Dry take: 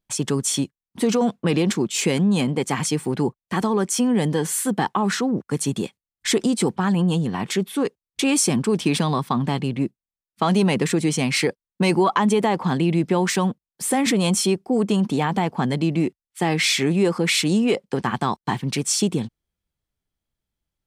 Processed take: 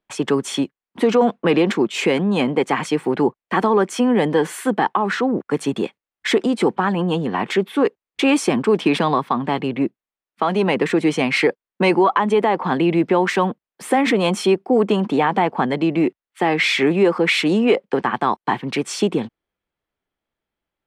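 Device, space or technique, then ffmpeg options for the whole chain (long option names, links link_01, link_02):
DJ mixer with the lows and highs turned down: -filter_complex "[0:a]acrossover=split=260 3100:gain=0.178 1 0.126[link_01][link_02][link_03];[link_01][link_02][link_03]amix=inputs=3:normalize=0,alimiter=limit=-13.5dB:level=0:latency=1:release=424,volume=7.5dB"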